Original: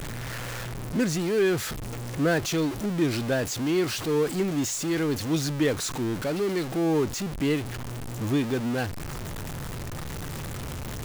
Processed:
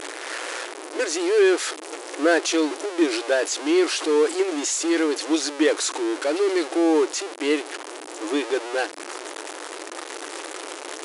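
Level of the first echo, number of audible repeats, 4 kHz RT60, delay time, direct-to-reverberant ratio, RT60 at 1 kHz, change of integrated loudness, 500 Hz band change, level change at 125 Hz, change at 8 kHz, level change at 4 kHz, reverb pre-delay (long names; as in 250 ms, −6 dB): no echo audible, no echo audible, no reverb audible, no echo audible, no reverb audible, no reverb audible, +5.0 dB, +6.0 dB, below −40 dB, +6.0 dB, +6.0 dB, no reverb audible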